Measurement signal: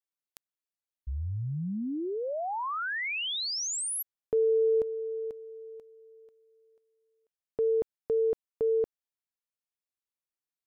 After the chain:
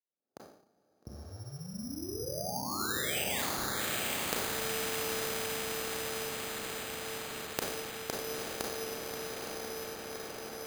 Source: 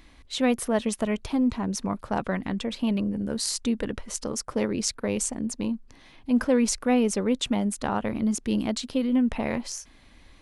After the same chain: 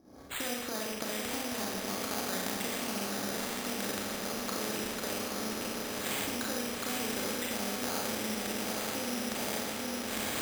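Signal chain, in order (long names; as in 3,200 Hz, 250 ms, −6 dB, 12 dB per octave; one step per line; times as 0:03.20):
camcorder AGC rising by 68 dB per second, up to +37 dB
low-pass that shuts in the quiet parts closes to 570 Hz, open at −19 dBFS
high-pass filter 96 Hz 12 dB per octave
bass and treble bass −6 dB, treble −12 dB
downward compressor, threshold −20 dBFS
high-frequency loss of the air 150 metres
notch comb filter 1,000 Hz
feedback delay with all-pass diffusion 891 ms, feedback 65%, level −4 dB
four-comb reverb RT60 0.66 s, combs from 29 ms, DRR −2 dB
bad sample-rate conversion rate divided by 8×, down none, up hold
every bin compressed towards the loudest bin 2 to 1
level −9 dB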